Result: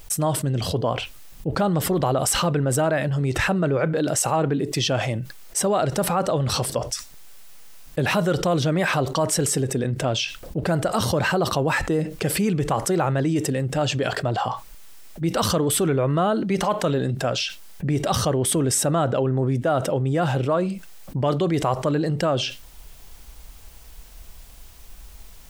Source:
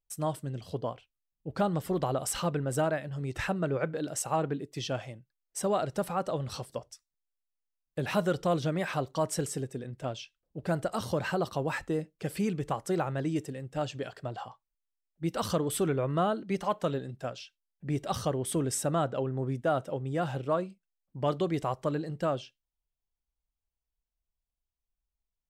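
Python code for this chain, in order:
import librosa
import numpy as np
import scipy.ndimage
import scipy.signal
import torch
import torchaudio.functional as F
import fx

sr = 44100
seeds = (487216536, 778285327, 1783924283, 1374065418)

y = fx.env_flatten(x, sr, amount_pct=70)
y = y * 10.0 ** (4.5 / 20.0)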